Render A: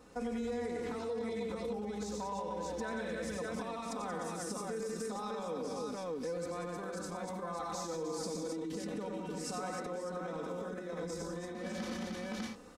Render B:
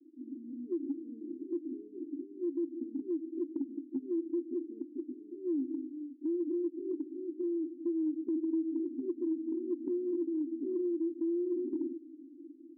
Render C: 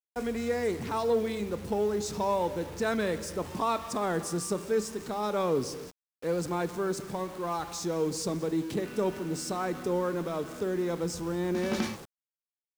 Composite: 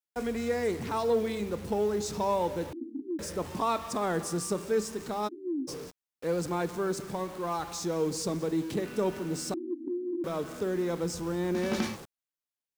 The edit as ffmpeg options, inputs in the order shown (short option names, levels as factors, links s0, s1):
-filter_complex "[1:a]asplit=3[s0][s1][s2];[2:a]asplit=4[s3][s4][s5][s6];[s3]atrim=end=2.732[s7];[s0]atrim=start=2.728:end=3.192[s8];[s4]atrim=start=3.188:end=5.29[s9];[s1]atrim=start=5.27:end=5.69[s10];[s5]atrim=start=5.67:end=9.542[s11];[s2]atrim=start=9.538:end=10.242[s12];[s6]atrim=start=10.238[s13];[s7][s8]acrossfade=d=0.004:c1=hsin:c2=hsin[s14];[s14][s9]acrossfade=d=0.004:c1=hsin:c2=hsin[s15];[s15][s10]acrossfade=d=0.02:c1=tri:c2=tri[s16];[s16][s11]acrossfade=d=0.02:c1=tri:c2=tri[s17];[s17][s12]acrossfade=d=0.004:c1=hsin:c2=hsin[s18];[s18][s13]acrossfade=d=0.004:c1=hsin:c2=hsin"